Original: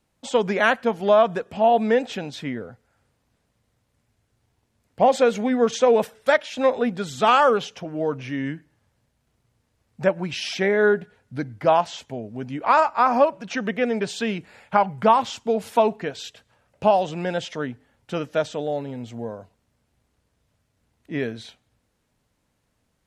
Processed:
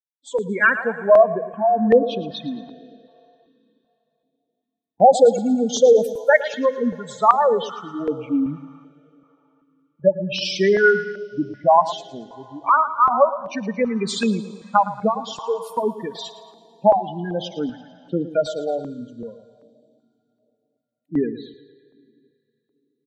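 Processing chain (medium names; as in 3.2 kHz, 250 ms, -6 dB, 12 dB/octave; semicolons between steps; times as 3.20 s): expander on every frequency bin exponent 1.5; high-pass 170 Hz 24 dB/octave; gate -42 dBFS, range -10 dB; spectral gate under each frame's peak -15 dB strong; dynamic bell 1.2 kHz, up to +6 dB, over -37 dBFS, Q 2.1; level rider gain up to 11 dB; feedback delay 112 ms, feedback 48%, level -14 dB; plate-style reverb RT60 3.2 s, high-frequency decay 0.95×, DRR 18.5 dB; step-sequenced notch 2.6 Hz 220–1800 Hz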